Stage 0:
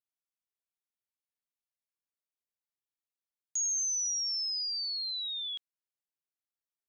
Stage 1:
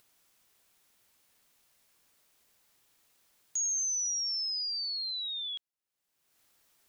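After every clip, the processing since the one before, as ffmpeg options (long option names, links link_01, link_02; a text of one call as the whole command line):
ffmpeg -i in.wav -af "acompressor=mode=upward:threshold=-48dB:ratio=2.5" out.wav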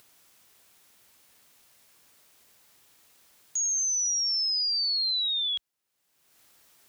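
ffmpeg -i in.wav -af "highpass=44,alimiter=level_in=8.5dB:limit=-24dB:level=0:latency=1,volume=-8.5dB,volume=8.5dB" out.wav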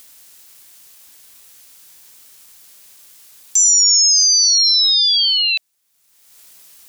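ffmpeg -i in.wav -af "crystalizer=i=4:c=0,highshelf=frequency=9700:gain=-8,aeval=exprs='val(0)*sin(2*PI*670*n/s)':channel_layout=same,volume=8dB" out.wav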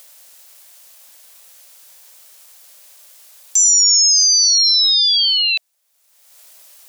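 ffmpeg -i in.wav -af "lowshelf=frequency=420:width_type=q:width=3:gain=-10" out.wav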